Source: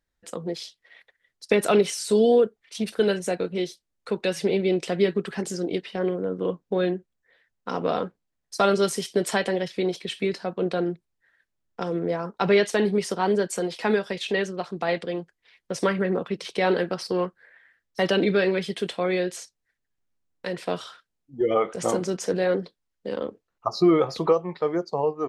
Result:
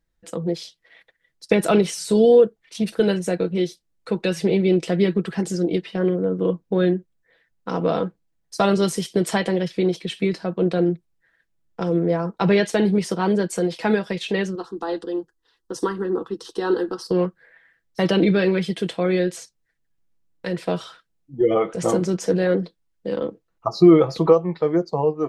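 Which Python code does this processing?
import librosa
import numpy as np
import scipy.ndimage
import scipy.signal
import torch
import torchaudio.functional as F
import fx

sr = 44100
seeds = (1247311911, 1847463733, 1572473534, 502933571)

y = fx.fixed_phaser(x, sr, hz=610.0, stages=6, at=(14.55, 17.11))
y = fx.low_shelf(y, sr, hz=400.0, db=7.5)
y = y + 0.39 * np.pad(y, (int(6.1 * sr / 1000.0), 0))[:len(y)]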